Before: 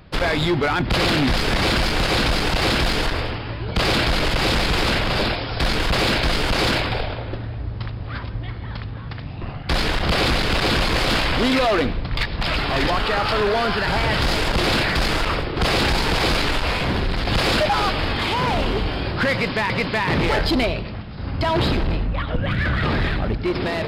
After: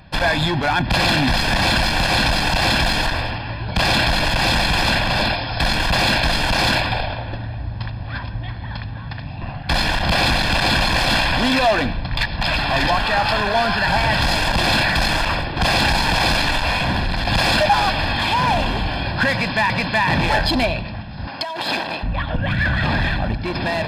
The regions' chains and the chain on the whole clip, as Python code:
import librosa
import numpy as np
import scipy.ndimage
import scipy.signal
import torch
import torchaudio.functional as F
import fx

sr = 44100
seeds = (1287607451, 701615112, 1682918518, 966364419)

y = fx.chain(x, sr, fx.highpass(hz=390.0, slope=12),
    fx.high_shelf(hz=5000.0, db=4.5),
    fx.over_compress(threshold_db=-25.0, ratio=-0.5), at=(21.27, 22.03))
y = fx.low_shelf(y, sr, hz=130.0, db=-6.5)
y = y + 0.69 * np.pad(y, (int(1.2 * sr / 1000.0), 0))[:len(y)]
y = F.gain(torch.from_numpy(y), 1.5).numpy()